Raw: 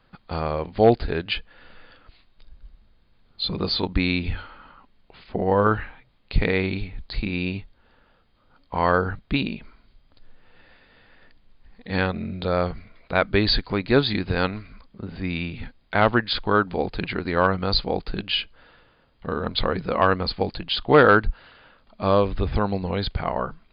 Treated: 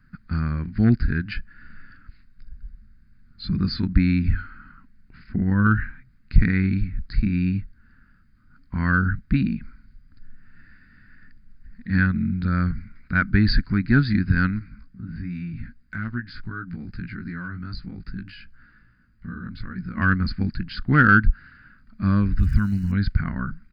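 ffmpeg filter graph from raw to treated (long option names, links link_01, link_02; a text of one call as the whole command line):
ffmpeg -i in.wav -filter_complex "[0:a]asettb=1/sr,asplit=3[link_01][link_02][link_03];[link_01]atrim=end=14.594[link_04];[link_02]atrim=start=14.59:end=19.97,asetpts=PTS-STARTPTS,afade=type=in:duration=0.004:curve=qsin,afade=type=out:start_time=5.376:duration=0.004:curve=qsin,acompressor=threshold=-33dB:ratio=2:attack=3.2:release=140:knee=1:detection=peak,flanger=delay=16.5:depth=2.1:speed=2.5[link_05];[link_03]atrim=start=19.966[link_06];[link_04][link_05]acrossfade=duration=0.004:curve1=hsin:curve2=qsin[link_07];[link_07][link_06]acrossfade=duration=0.004:curve1=qsin:curve2=hsin,asettb=1/sr,asplit=3[link_08][link_09][link_10];[link_08]atrim=end=22.384[link_11];[link_09]atrim=start=22.38:end=22.92,asetpts=PTS-STARTPTS,afade=type=in:duration=0.004:curve=qsin,afade=type=out:start_time=0.536:duration=0.004:curve=qsin,equalizer=frequency=510:width=0.8:gain=-11,aeval=exprs='val(0)*gte(abs(val(0)),0.00531)':channel_layout=same,aeval=exprs='val(0)+0.00316*sin(2*PI*2900*n/s)':channel_layout=same[link_12];[link_10]atrim=start=22.916[link_13];[link_11][link_12]acrossfade=duration=0.004:curve1=hsin:curve2=qsin[link_14];[link_14][link_13]acrossfade=duration=0.004:curve1=qsin:curve2=hsin,firequalizer=gain_entry='entry(230,0);entry(470,-28);entry(820,-28);entry(1500,-1);entry(3300,-27);entry(5300,-5)':delay=0.05:min_phase=1,acontrast=54,volume=1dB" out.wav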